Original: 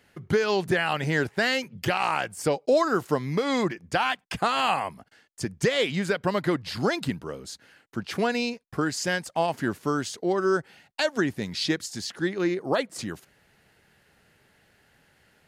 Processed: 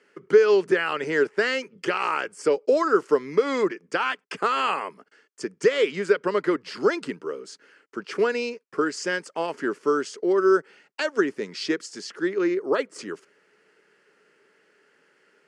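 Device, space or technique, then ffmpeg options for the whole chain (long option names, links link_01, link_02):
television speaker: -af "highpass=frequency=220:width=0.5412,highpass=frequency=220:width=1.3066,equalizer=frequency=230:width_type=q:width=4:gain=-5,equalizer=frequency=420:width_type=q:width=4:gain=10,equalizer=frequency=740:width_type=q:width=4:gain=-10,equalizer=frequency=1300:width_type=q:width=4:gain=5,equalizer=frequency=3800:width_type=q:width=4:gain=-10,equalizer=frequency=6700:width_type=q:width=4:gain=-3,lowpass=frequency=8000:width=0.5412,lowpass=frequency=8000:width=1.3066"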